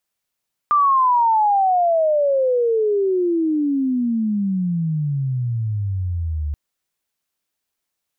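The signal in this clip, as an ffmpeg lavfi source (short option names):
-f lavfi -i "aevalsrc='pow(10,(-12-8.5*t/5.83)/20)*sin(2*PI*1200*5.83/log(72/1200)*(exp(log(72/1200)*t/5.83)-1))':d=5.83:s=44100"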